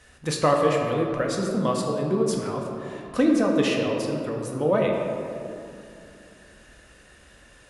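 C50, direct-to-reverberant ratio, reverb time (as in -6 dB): 2.5 dB, 0.0 dB, 2.6 s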